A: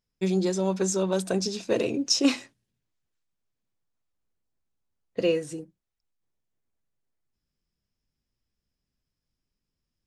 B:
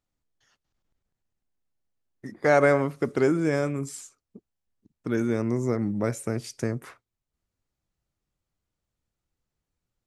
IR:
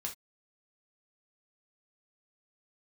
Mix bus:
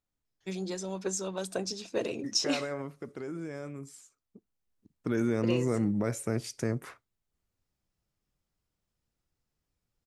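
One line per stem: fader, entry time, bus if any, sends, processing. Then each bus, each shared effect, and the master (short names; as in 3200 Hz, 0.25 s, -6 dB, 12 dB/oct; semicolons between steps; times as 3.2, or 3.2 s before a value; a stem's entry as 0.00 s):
-5.0 dB, 0.25 s, send -17.5 dB, harmonic-percussive split harmonic -7 dB
2.23 s -5.5 dB -> 2.99 s -12.5 dB -> 4.03 s -12.5 dB -> 4.8 s -1.5 dB, 0.00 s, send -21 dB, limiter -18 dBFS, peak gain reduction 10 dB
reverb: on, pre-delay 3 ms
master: dry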